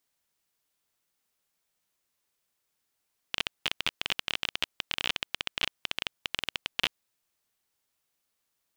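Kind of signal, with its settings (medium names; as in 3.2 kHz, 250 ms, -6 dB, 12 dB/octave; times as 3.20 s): random clicks 20 per s -10 dBFS 3.72 s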